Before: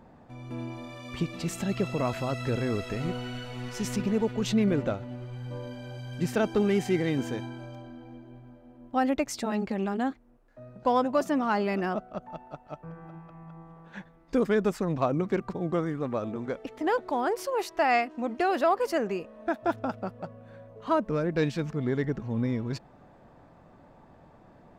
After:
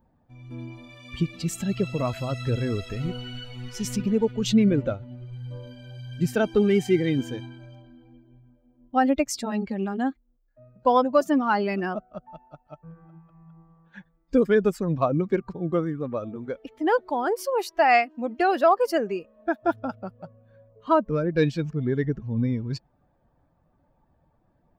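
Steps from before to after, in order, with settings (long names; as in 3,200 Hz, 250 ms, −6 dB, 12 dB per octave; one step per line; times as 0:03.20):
spectral dynamics exaggerated over time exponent 1.5
level +7 dB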